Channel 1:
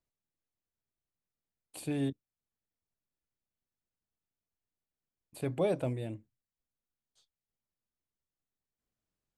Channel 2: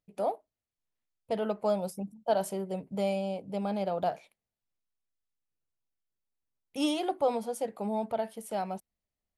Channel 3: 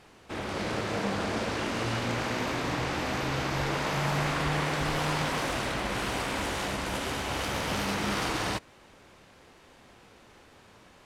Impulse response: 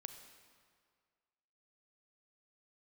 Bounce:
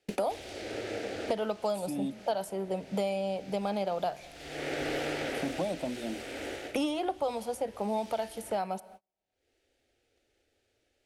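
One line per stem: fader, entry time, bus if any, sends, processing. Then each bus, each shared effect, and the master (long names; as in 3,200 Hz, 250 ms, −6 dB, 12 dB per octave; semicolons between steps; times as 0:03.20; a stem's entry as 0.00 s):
−1.5 dB, 0.00 s, no send, phaser with its sweep stopped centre 430 Hz, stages 6
−0.5 dB, 0.00 s, send −8 dB, low-shelf EQ 240 Hz −8.5 dB
−5.5 dB, 0.00 s, no send, phaser with its sweep stopped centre 430 Hz, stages 4; automatic ducking −19 dB, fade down 1.65 s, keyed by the second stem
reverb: on, RT60 2.0 s, pre-delay 32 ms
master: noise gate −57 dBFS, range −41 dB; multiband upward and downward compressor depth 100%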